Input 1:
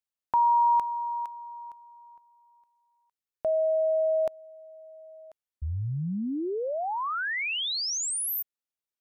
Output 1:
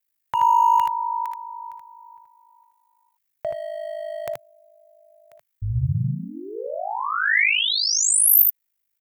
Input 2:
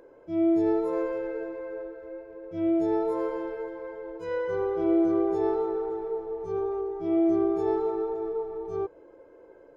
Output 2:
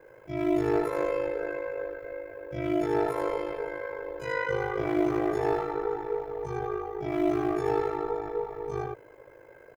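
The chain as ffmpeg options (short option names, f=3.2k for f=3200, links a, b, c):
-filter_complex "[0:a]asplit=2[a][b];[b]asoftclip=type=hard:threshold=-22.5dB,volume=-7dB[c];[a][c]amix=inputs=2:normalize=0,aemphasis=mode=production:type=50fm,aecho=1:1:59|78:0.168|0.668,aeval=exprs='val(0)*sin(2*PI*26*n/s)':c=same,equalizer=f=125:t=o:w=1:g=12,equalizer=f=250:t=o:w=1:g=-11,equalizer=f=2k:t=o:w=1:g=10"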